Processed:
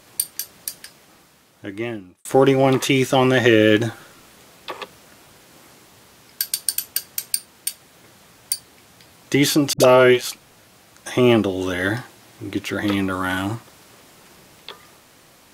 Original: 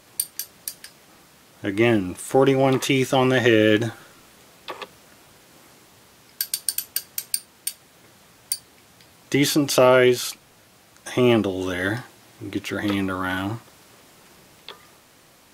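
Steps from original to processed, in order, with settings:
0:00.75–0:02.25: fade out
0:09.73–0:10.27: all-pass dispersion highs, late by 71 ms, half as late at 460 Hz
0:13.12–0:13.55: parametric band 8,400 Hz +7 dB 0.77 octaves
level +2.5 dB

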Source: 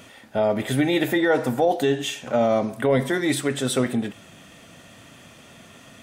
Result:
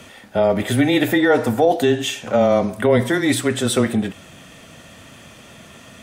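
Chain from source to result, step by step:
frequency shifter −14 Hz
level +4.5 dB

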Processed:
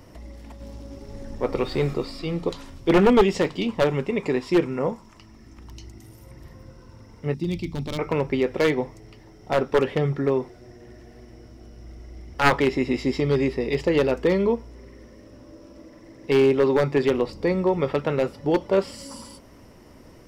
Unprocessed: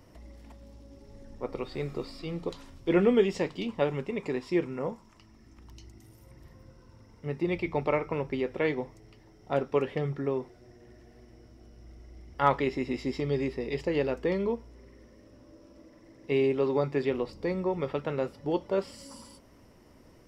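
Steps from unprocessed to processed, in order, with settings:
wavefolder on the positive side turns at −20 dBFS
0:00.60–0:01.94: leveller curve on the samples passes 1
0:07.34–0:07.99: flat-topped bell 970 Hz −16 dB 3 octaves
level +8 dB

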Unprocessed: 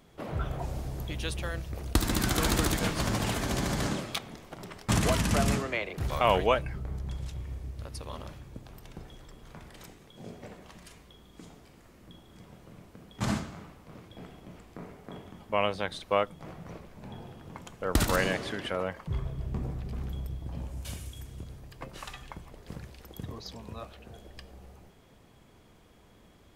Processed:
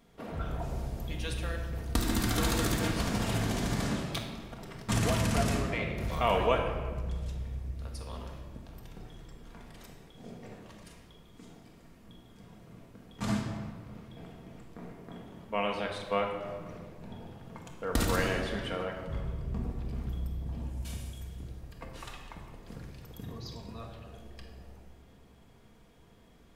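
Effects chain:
rectangular room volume 1,600 cubic metres, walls mixed, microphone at 1.7 metres
level −5 dB

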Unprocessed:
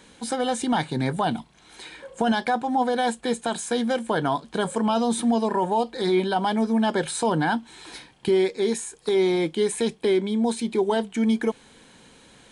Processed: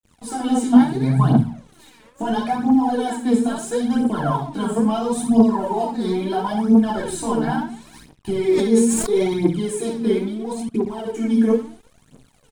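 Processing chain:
0:06.97–0:07.58: low shelf with overshoot 100 Hz +8.5 dB, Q 3
repeating echo 61 ms, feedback 26%, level −7 dB
rectangular room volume 300 cubic metres, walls furnished, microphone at 3.2 metres
0:10.28–0:11.06: output level in coarse steps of 21 dB
octave-band graphic EQ 125/250/500/2,000/4,000 Hz +7/+3/−3/−7/−6 dB
dead-zone distortion −42.5 dBFS
phase shifter 0.74 Hz, delay 4.7 ms, feedback 68%
0:08.48–0:09.34: level that may fall only so fast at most 36 dB per second
level −6 dB

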